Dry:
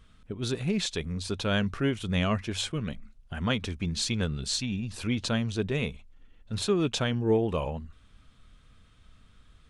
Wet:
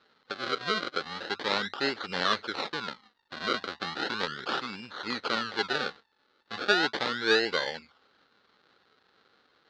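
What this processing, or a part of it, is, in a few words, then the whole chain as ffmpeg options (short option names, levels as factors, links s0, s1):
circuit-bent sampling toy: -af "acrusher=samples=34:mix=1:aa=0.000001:lfo=1:lforange=34:lforate=0.36,highpass=580,equalizer=f=660:t=q:w=4:g=-9,equalizer=f=970:t=q:w=4:g=-6,equalizer=f=1400:t=q:w=4:g=6,equalizer=f=2400:t=q:w=4:g=-5,equalizer=f=4100:t=q:w=4:g=9,lowpass=f=4500:w=0.5412,lowpass=f=4500:w=1.3066,volume=2"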